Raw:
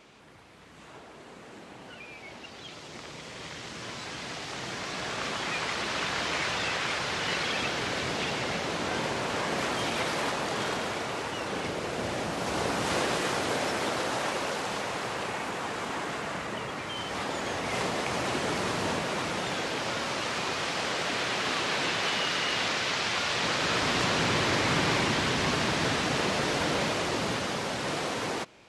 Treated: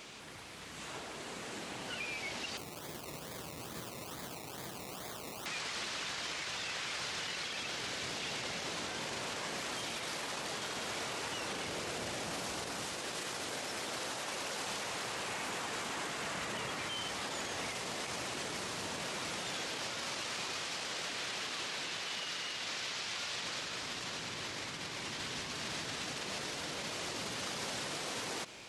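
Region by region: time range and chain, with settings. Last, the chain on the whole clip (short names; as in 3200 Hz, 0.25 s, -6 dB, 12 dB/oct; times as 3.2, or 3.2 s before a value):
2.57–5.46 steep low-pass 1300 Hz 72 dB/oct + decimation with a swept rate 22×, swing 60% 2.3 Hz
whole clip: negative-ratio compressor -33 dBFS, ratio -0.5; high shelf 2700 Hz +11 dB; limiter -28.5 dBFS; gain -2 dB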